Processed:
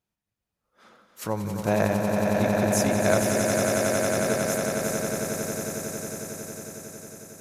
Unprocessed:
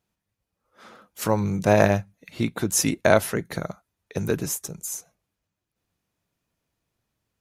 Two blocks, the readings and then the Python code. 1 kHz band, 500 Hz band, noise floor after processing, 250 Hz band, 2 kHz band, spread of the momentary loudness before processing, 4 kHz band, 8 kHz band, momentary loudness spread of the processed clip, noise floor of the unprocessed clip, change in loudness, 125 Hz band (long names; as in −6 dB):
0.0 dB, +0.5 dB, below −85 dBFS, +1.0 dB, +0.5 dB, 14 LU, +0.5 dB, +0.5 dB, 15 LU, −84 dBFS, −1.5 dB, −1.5 dB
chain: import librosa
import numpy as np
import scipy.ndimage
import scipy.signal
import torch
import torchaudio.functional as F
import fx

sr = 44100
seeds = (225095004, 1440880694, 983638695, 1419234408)

p1 = x + fx.echo_swell(x, sr, ms=91, loudest=8, wet_db=-6.0, dry=0)
y = p1 * 10.0 ** (-6.5 / 20.0)